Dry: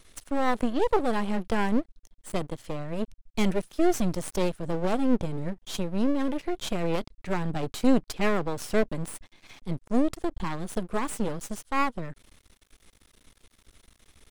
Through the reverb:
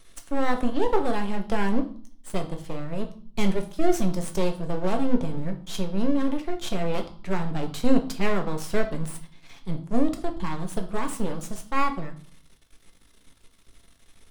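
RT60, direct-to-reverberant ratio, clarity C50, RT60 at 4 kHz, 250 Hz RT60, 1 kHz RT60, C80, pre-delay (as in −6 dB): 0.50 s, 4.5 dB, 12.5 dB, 0.50 s, 0.65 s, 0.50 s, 17.0 dB, 4 ms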